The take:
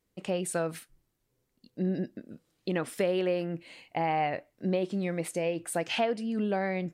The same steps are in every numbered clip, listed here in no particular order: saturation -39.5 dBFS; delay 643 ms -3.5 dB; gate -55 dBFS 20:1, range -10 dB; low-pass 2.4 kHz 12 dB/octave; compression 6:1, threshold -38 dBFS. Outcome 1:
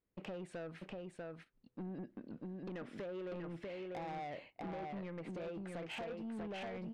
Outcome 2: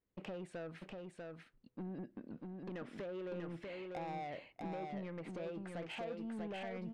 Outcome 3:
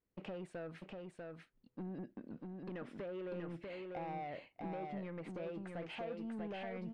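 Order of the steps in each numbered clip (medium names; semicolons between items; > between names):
low-pass > compression > delay > gate > saturation; gate > compression > low-pass > saturation > delay; compression > saturation > low-pass > gate > delay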